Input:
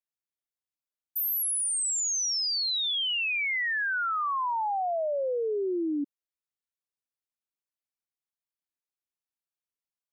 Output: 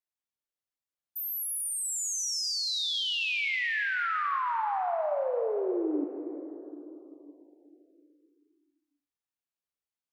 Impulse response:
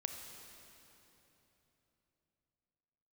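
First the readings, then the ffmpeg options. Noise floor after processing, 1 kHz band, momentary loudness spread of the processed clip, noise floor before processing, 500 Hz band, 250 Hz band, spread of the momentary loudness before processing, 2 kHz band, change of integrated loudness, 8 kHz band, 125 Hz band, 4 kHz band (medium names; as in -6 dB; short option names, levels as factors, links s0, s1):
under -85 dBFS, -1.0 dB, 14 LU, under -85 dBFS, -0.5 dB, -0.5 dB, 5 LU, -1.0 dB, -2.5 dB, -4.0 dB, no reading, -2.5 dB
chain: -filter_complex "[0:a]highshelf=f=5400:g=-4.5[s0];[1:a]atrim=start_sample=2205[s1];[s0][s1]afir=irnorm=-1:irlink=0"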